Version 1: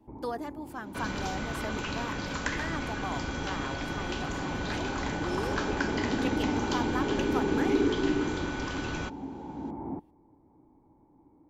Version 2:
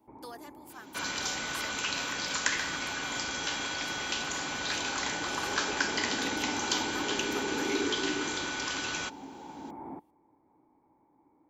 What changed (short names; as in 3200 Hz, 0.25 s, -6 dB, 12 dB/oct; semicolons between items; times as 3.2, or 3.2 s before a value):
speech -9.0 dB; master: add tilt +4 dB/oct